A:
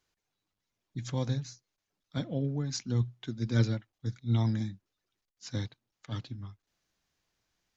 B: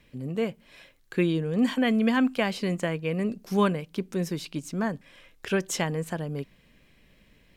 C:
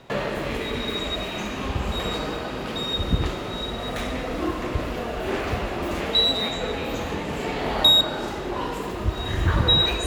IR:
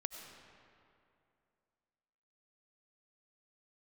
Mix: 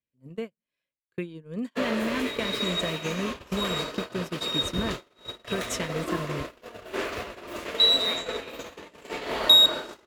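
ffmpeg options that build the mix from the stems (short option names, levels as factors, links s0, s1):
-filter_complex "[0:a]adelay=1200,volume=0.2[s0];[1:a]volume=1.26[s1];[2:a]bass=f=250:g=-13,treble=f=4000:g=3,adelay=1650,volume=0.891[s2];[s0][s1]amix=inputs=2:normalize=0,highpass=54,acompressor=threshold=0.0447:ratio=16,volume=1[s3];[s2][s3]amix=inputs=2:normalize=0,agate=range=0.0141:threshold=0.0355:ratio=16:detection=peak,bandreject=f=790:w=5.2"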